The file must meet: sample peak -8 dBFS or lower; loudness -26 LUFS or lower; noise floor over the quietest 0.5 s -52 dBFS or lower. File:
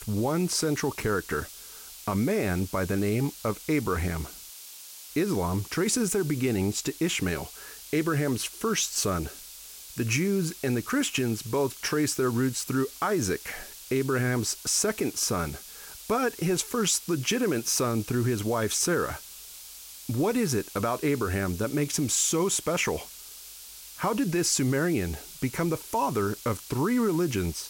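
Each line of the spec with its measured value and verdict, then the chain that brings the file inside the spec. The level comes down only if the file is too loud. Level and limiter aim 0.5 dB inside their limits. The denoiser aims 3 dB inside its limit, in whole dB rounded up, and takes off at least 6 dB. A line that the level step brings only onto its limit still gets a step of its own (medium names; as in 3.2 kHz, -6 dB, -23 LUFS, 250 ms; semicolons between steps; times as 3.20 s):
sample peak -13.5 dBFS: pass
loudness -27.5 LUFS: pass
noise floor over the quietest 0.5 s -45 dBFS: fail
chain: noise reduction 10 dB, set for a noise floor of -45 dBFS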